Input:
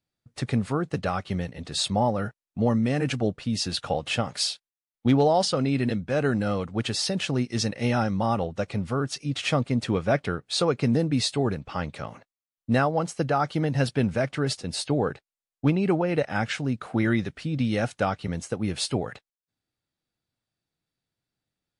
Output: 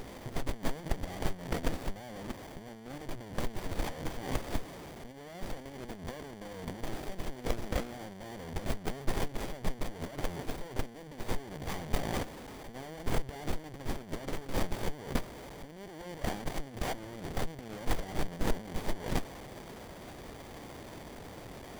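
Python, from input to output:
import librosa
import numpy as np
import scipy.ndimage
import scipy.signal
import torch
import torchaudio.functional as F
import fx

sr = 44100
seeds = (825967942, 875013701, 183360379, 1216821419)

y = fx.power_curve(x, sr, exponent=0.5)
y = fx.over_compress(y, sr, threshold_db=-31.0, ratio=-1.0)
y = scipy.signal.lfilter([1.0, -0.9], [1.0], y)
y = fx.running_max(y, sr, window=33)
y = F.gain(torch.from_numpy(y), 3.0).numpy()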